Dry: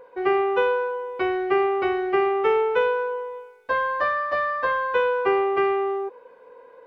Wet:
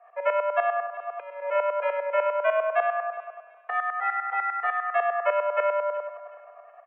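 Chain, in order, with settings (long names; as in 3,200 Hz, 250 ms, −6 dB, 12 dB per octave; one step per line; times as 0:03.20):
0:00.86–0:01.42: compressor whose output falls as the input rises −32 dBFS, ratio −1
shaped tremolo saw up 10 Hz, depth 80%
on a send: repeating echo 371 ms, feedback 28%, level −16 dB
on the sum: single-sideband voice off tune +200 Hz 220–2,500 Hz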